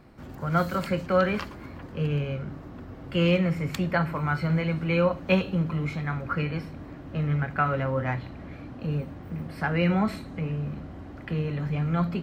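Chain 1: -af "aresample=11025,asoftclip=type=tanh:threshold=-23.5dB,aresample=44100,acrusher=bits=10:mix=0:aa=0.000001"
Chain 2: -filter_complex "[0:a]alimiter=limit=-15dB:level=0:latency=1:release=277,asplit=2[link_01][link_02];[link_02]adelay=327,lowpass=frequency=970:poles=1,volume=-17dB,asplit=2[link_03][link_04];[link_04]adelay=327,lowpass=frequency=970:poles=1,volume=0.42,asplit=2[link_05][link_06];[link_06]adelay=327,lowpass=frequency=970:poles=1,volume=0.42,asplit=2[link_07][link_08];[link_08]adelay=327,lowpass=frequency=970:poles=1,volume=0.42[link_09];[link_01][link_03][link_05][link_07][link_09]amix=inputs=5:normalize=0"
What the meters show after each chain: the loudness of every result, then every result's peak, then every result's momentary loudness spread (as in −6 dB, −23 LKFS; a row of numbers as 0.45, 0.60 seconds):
−31.0, −28.5 LKFS; −22.0, −14.0 dBFS; 11, 13 LU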